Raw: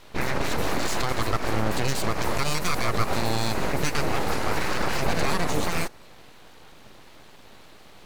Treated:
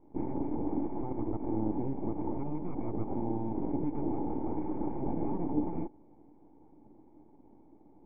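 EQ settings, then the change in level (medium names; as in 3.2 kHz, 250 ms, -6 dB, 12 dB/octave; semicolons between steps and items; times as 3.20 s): cascade formant filter u; +4.0 dB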